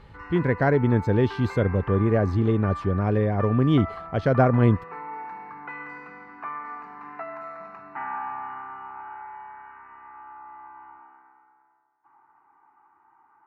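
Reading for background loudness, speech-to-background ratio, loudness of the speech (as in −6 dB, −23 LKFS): −37.5 LKFS, 15.0 dB, −22.5 LKFS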